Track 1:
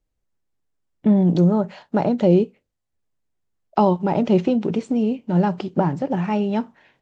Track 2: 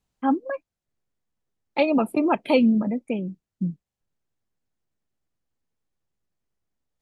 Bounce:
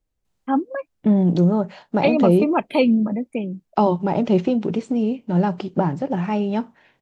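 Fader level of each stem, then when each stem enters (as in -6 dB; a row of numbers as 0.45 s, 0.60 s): -0.5 dB, +1.5 dB; 0.00 s, 0.25 s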